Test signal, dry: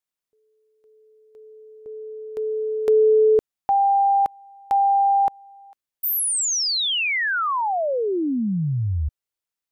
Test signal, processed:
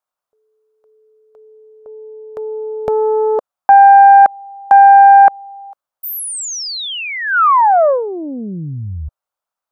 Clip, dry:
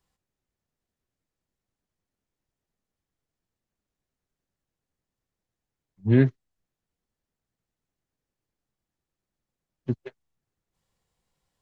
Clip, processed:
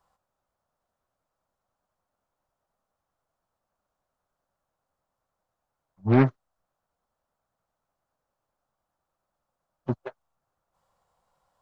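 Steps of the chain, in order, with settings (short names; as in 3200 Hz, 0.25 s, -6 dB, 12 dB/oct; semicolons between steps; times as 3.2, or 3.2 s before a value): band shelf 880 Hz +14 dB; Doppler distortion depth 0.44 ms; gain -1 dB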